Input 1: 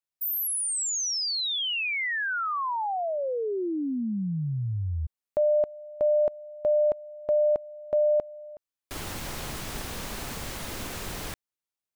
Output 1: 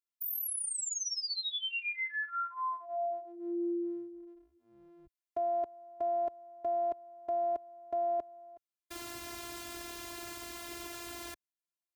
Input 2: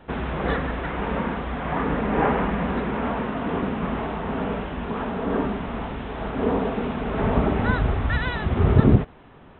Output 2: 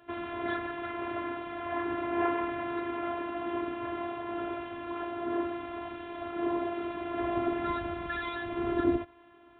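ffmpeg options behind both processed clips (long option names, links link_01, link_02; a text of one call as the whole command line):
ffmpeg -i in.wav -af "afftfilt=real='hypot(re,im)*cos(PI*b)':imag='0':win_size=512:overlap=0.75,highpass=77,volume=-3.5dB" out.wav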